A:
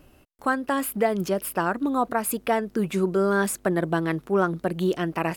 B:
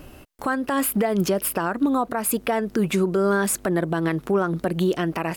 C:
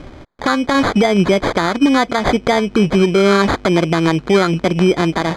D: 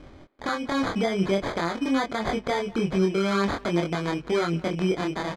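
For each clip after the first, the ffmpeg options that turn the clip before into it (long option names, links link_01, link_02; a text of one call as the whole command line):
ffmpeg -i in.wav -filter_complex "[0:a]asplit=2[link_01][link_02];[link_02]acompressor=threshold=-31dB:ratio=6,volume=0.5dB[link_03];[link_01][link_03]amix=inputs=2:normalize=0,alimiter=limit=-17.5dB:level=0:latency=1:release=165,volume=4.5dB" out.wav
ffmpeg -i in.wav -af "acrusher=samples=16:mix=1:aa=0.000001,lowpass=4600,volume=8.5dB" out.wav
ffmpeg -i in.wav -filter_complex "[0:a]flanger=delay=22.5:depth=4.2:speed=0.49,asplit=2[link_01][link_02];[link_02]adelay=190,highpass=300,lowpass=3400,asoftclip=type=hard:threshold=-13dB,volume=-20dB[link_03];[link_01][link_03]amix=inputs=2:normalize=0,volume=-8.5dB" out.wav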